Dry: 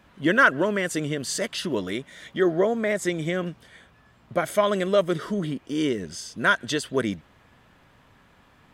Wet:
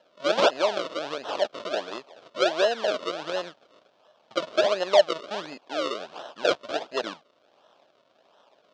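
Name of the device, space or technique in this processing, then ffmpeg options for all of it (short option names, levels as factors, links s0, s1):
circuit-bent sampling toy: -af "acrusher=samples=37:mix=1:aa=0.000001:lfo=1:lforange=37:lforate=1.4,highpass=590,equalizer=f=610:t=q:w=4:g=8,equalizer=f=2000:t=q:w=4:g=-8,equalizer=f=3400:t=q:w=4:g=4,lowpass=f=5300:w=0.5412,lowpass=f=5300:w=1.3066"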